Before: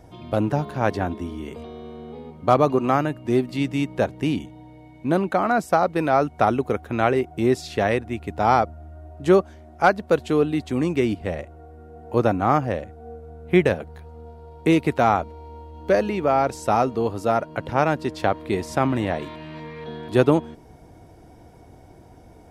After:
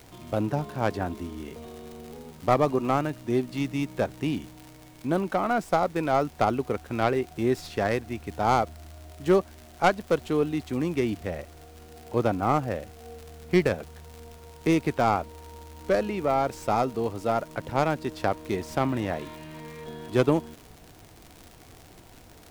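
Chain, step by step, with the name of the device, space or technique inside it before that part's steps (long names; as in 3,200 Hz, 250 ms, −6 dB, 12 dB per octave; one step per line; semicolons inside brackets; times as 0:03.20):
record under a worn stylus (stylus tracing distortion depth 0.13 ms; surface crackle 110 per second −30 dBFS; pink noise bed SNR 28 dB)
level −5 dB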